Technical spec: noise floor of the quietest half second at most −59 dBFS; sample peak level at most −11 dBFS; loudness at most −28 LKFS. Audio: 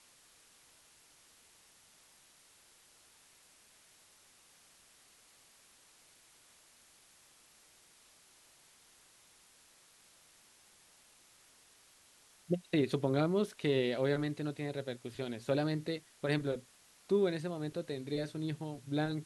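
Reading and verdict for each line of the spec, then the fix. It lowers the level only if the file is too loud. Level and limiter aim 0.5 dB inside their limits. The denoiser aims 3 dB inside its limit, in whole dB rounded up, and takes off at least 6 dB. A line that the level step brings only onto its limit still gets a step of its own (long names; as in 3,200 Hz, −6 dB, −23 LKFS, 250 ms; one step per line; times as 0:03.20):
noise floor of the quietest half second −64 dBFS: in spec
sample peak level −18.5 dBFS: in spec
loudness −35.0 LKFS: in spec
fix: no processing needed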